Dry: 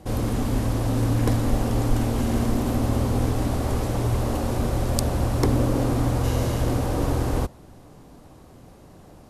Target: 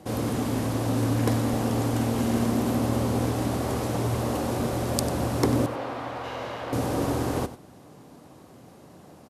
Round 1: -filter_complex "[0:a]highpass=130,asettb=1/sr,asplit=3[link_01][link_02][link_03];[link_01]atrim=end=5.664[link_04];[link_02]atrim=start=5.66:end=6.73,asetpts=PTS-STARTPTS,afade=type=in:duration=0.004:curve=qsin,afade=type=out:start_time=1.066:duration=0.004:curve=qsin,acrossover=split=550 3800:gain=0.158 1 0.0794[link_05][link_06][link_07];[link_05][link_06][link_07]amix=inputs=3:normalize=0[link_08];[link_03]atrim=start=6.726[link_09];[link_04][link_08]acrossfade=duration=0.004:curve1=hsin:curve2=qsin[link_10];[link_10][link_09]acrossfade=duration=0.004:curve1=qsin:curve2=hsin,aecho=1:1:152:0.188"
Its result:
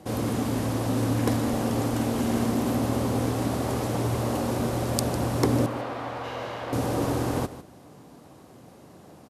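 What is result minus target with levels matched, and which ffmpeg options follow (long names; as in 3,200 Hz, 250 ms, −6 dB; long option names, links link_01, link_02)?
echo 57 ms late
-filter_complex "[0:a]highpass=130,asettb=1/sr,asplit=3[link_01][link_02][link_03];[link_01]atrim=end=5.664[link_04];[link_02]atrim=start=5.66:end=6.73,asetpts=PTS-STARTPTS,afade=type=in:duration=0.004:curve=qsin,afade=type=out:start_time=1.066:duration=0.004:curve=qsin,acrossover=split=550 3800:gain=0.158 1 0.0794[link_05][link_06][link_07];[link_05][link_06][link_07]amix=inputs=3:normalize=0[link_08];[link_03]atrim=start=6.726[link_09];[link_04][link_08]acrossfade=duration=0.004:curve1=hsin:curve2=qsin[link_10];[link_10][link_09]acrossfade=duration=0.004:curve1=qsin:curve2=hsin,aecho=1:1:95:0.188"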